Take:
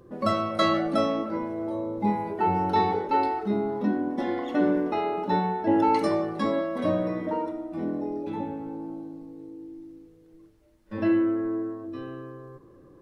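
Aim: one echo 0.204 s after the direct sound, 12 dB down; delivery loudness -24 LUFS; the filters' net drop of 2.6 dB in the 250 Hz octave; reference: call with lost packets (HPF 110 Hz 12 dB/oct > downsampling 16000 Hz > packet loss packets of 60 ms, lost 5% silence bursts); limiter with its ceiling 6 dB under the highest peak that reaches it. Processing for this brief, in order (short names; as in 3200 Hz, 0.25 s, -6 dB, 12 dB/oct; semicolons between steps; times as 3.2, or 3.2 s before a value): bell 250 Hz -3.5 dB; limiter -18 dBFS; HPF 110 Hz 12 dB/oct; echo 0.204 s -12 dB; downsampling 16000 Hz; packet loss packets of 60 ms, lost 5% silence bursts; gain +5.5 dB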